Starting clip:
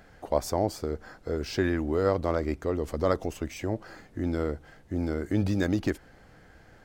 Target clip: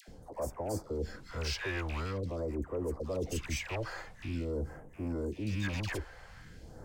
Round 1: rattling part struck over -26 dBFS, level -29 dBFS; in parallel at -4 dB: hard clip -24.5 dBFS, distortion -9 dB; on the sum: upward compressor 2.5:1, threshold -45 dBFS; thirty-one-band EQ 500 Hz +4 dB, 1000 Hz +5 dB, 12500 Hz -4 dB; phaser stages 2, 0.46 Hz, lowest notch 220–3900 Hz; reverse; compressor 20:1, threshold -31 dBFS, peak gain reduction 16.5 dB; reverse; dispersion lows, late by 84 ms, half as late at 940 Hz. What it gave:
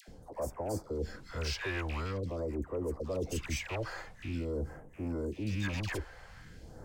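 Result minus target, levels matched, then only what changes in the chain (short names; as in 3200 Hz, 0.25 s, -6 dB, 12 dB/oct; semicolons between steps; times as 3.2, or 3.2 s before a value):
hard clip: distortion -5 dB
change: hard clip -32 dBFS, distortion -4 dB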